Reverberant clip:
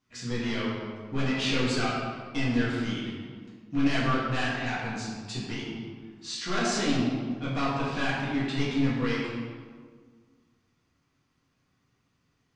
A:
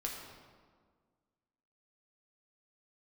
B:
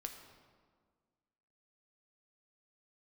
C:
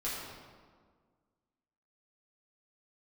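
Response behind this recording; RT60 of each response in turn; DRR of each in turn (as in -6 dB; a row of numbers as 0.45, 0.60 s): C; 1.7, 1.7, 1.7 s; -1.5, 4.0, -8.5 dB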